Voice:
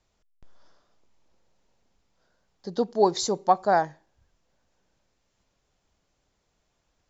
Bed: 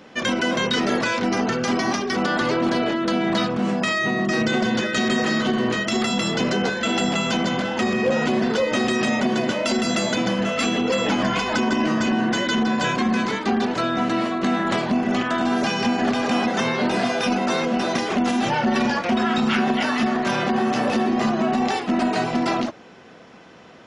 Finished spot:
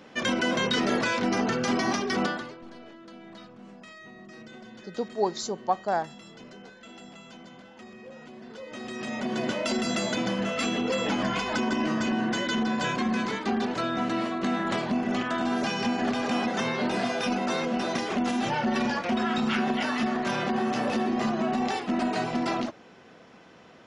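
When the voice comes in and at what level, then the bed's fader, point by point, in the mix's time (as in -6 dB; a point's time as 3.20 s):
2.20 s, -5.5 dB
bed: 2.25 s -4 dB
2.57 s -25 dB
8.37 s -25 dB
9.46 s -6 dB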